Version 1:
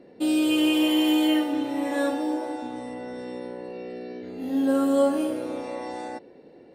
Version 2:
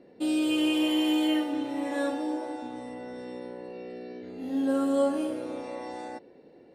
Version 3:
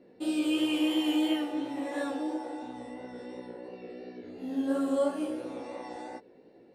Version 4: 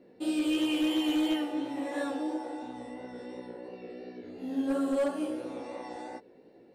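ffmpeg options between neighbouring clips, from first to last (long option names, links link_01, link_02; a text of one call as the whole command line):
ffmpeg -i in.wav -af "lowpass=11000,volume=-4dB" out.wav
ffmpeg -i in.wav -af "flanger=delay=15:depth=4.8:speed=2.9" out.wav
ffmpeg -i in.wav -af "asoftclip=type=hard:threshold=-23dB" out.wav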